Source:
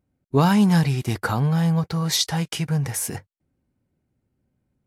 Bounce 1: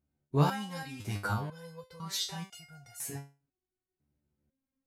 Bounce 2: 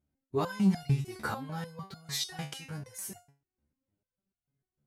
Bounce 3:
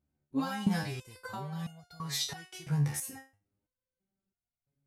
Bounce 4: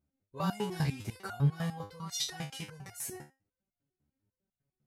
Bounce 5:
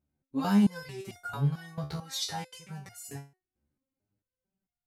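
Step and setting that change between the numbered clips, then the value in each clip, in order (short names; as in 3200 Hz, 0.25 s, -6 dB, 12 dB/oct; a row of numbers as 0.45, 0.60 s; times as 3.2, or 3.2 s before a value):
stepped resonator, rate: 2, 6.7, 3, 10, 4.5 Hz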